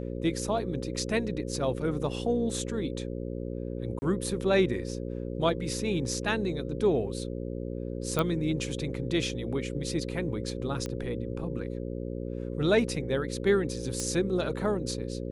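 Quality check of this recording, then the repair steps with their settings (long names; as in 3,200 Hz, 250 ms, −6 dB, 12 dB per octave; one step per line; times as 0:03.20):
mains buzz 60 Hz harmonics 9 −35 dBFS
0:03.99–0:04.02: drop-out 30 ms
0:08.19: click −13 dBFS
0:10.86: click −21 dBFS
0:14.00: click −18 dBFS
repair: click removal
hum removal 60 Hz, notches 9
repair the gap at 0:03.99, 30 ms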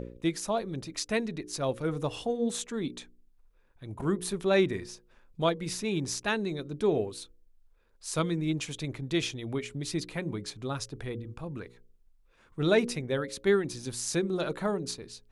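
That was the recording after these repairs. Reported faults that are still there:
none of them is left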